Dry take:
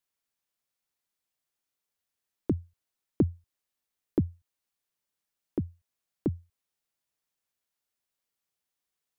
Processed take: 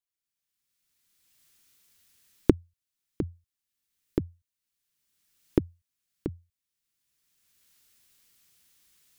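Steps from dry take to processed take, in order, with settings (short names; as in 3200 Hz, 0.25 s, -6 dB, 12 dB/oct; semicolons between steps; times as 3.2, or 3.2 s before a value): recorder AGC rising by 21 dB/s; bell 690 Hz -13 dB 1.8 oct; gain -8 dB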